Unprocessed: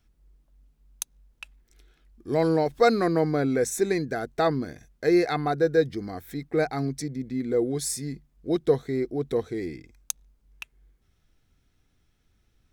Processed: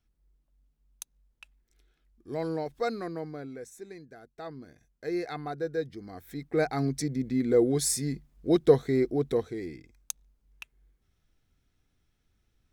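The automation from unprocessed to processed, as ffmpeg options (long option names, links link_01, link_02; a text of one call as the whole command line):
ffmpeg -i in.wav -af "volume=12.5dB,afade=type=out:start_time=2.63:duration=1.09:silence=0.298538,afade=type=in:start_time=4.33:duration=0.98:silence=0.316228,afade=type=in:start_time=6.03:duration=1.14:silence=0.251189,afade=type=out:start_time=9.1:duration=0.46:silence=0.446684" out.wav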